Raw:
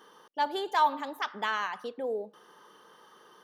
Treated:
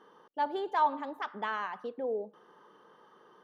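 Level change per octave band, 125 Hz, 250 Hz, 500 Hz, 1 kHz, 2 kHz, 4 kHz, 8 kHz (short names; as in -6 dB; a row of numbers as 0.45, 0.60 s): n/a, -0.5 dB, -1.0 dB, -2.5 dB, -5.0 dB, -10.0 dB, under -15 dB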